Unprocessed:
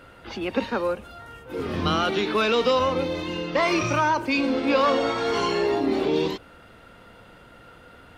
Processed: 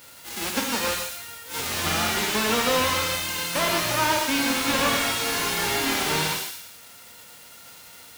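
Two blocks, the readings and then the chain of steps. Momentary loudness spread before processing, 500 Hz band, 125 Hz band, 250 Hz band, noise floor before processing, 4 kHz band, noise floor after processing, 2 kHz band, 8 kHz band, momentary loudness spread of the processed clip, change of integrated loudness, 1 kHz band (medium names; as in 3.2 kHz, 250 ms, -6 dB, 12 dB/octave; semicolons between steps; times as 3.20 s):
12 LU, -6.0 dB, -1.5 dB, -4.0 dB, -50 dBFS, +6.0 dB, -47 dBFS, +3.5 dB, +16.5 dB, 15 LU, +0.5 dB, -1.0 dB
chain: formants flattened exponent 0.1; high-pass 63 Hz; feedback echo behind a high-pass 114 ms, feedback 43%, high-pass 1.7 kHz, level -9 dB; gated-style reverb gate 170 ms flat, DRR 2 dB; slew-rate limiter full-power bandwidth 290 Hz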